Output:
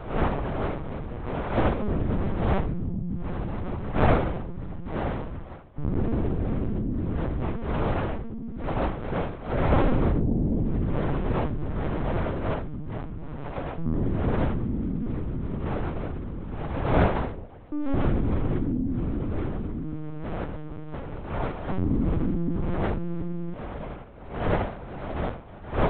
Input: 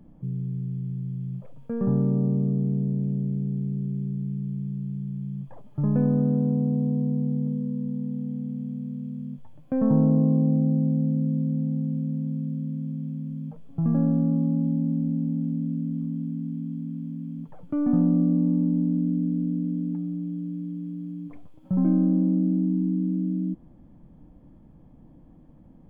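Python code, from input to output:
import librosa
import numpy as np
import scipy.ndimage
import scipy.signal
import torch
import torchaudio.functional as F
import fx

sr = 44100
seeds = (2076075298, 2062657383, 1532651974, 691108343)

p1 = fx.dmg_wind(x, sr, seeds[0], corner_hz=610.0, level_db=-27.0)
p2 = scipy.signal.sosfilt(scipy.signal.butter(2, 50.0, 'highpass', fs=sr, output='sos'), p1)
p3 = fx.low_shelf(p2, sr, hz=380.0, db=-2.5)
p4 = fx.notch(p3, sr, hz=740.0, q=20.0)
p5 = p4 + fx.echo_bbd(p4, sr, ms=374, stages=2048, feedback_pct=34, wet_db=-24, dry=0)
p6 = fx.lpc_vocoder(p5, sr, seeds[1], excitation='pitch_kept', order=8)
y = p6 * 10.0 ** (-1.5 / 20.0)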